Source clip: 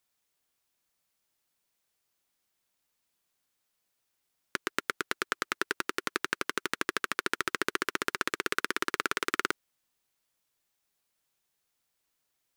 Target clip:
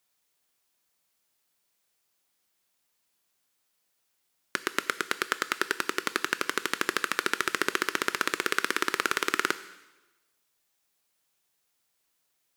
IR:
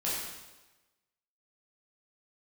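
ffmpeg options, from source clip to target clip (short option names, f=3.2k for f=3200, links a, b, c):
-filter_complex "[0:a]lowshelf=f=110:g=-6,asplit=2[a][b];[1:a]atrim=start_sample=2205,highshelf=f=2.8k:g=8.5[c];[b][c]afir=irnorm=-1:irlink=0,volume=-20.5dB[d];[a][d]amix=inputs=2:normalize=0,volume=2.5dB"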